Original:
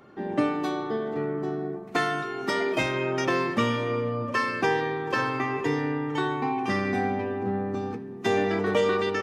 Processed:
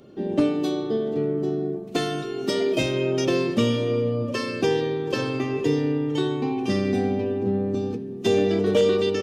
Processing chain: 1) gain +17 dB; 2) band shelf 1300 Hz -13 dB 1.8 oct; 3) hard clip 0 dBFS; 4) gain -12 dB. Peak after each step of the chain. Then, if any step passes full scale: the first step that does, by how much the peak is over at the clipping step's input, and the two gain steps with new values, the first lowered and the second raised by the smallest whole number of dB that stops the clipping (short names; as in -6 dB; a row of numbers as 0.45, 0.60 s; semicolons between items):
+6.0, +4.5, 0.0, -12.0 dBFS; step 1, 4.5 dB; step 1 +12 dB, step 4 -7 dB